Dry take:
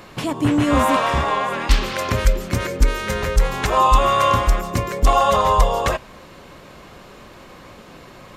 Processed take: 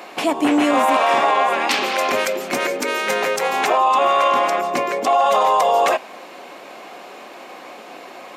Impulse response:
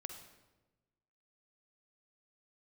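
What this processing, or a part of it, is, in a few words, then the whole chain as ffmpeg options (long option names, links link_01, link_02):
laptop speaker: -filter_complex "[0:a]highpass=frequency=260:width=0.5412,highpass=frequency=260:width=1.3066,equalizer=frequency=740:width_type=o:width=0.38:gain=10,equalizer=frequency=2400:width_type=o:width=0.45:gain=5,alimiter=limit=-11dB:level=0:latency=1:release=19,asettb=1/sr,asplit=3[link_01][link_02][link_03];[link_01]atrim=end=3.684[link_04];[link_02]atrim=start=3.68:end=5.27,asetpts=PTS-STARTPTS,afade=type=in:duration=0.004:curve=qsin,afade=type=out:start_time=1.586:duration=0.004:curve=qsin,highshelf=frequency=7100:gain=-9.5[link_05];[link_03]atrim=start=5.266[link_06];[link_04][link_05]acrossfade=duration=0.004:curve1=hsin:curve2=qsin[link_07];[link_07][link_06]acrossfade=duration=0.004:curve1=qsin:curve2=hsin,volume=3dB"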